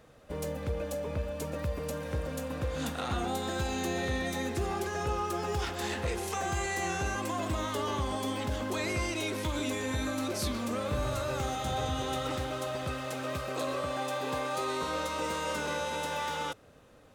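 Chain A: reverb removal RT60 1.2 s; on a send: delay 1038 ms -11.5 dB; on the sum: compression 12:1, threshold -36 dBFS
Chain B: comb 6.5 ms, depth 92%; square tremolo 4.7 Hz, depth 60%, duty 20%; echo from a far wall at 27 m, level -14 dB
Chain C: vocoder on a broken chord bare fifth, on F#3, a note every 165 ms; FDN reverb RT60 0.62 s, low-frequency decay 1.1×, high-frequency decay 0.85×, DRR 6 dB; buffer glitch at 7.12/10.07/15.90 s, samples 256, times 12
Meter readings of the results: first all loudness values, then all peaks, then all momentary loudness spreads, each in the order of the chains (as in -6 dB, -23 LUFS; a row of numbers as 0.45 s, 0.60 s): -40.5 LUFS, -36.0 LUFS, -30.5 LUFS; -26.0 dBFS, -18.5 dBFS, -13.5 dBFS; 2 LU, 4 LU, 9 LU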